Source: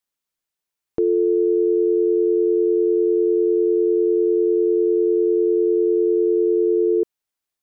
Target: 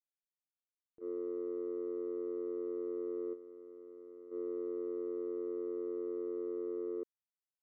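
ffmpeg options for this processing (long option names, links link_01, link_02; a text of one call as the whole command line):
ffmpeg -i in.wav -filter_complex "[0:a]asettb=1/sr,asplit=3[link_01][link_02][link_03];[link_01]atrim=end=3.334[link_04];[link_02]atrim=start=3.33:end=4.31,asetpts=PTS-STARTPTS,afade=type=in:duration=0.004:curve=qsin,afade=type=out:start_time=0.976:duration=0.004:curve=qsin,lowshelf=frequency=210:gain=-4.5[link_05];[link_03]atrim=start=4.306[link_06];[link_04][link_05]acrossfade=duration=0.004:curve1=hsin:curve2=qsin[link_07];[link_07][link_06]acrossfade=duration=0.004:curve1=qsin:curve2=hsin,agate=range=-56dB:threshold=-12dB:ratio=16:detection=peak,volume=18dB" out.wav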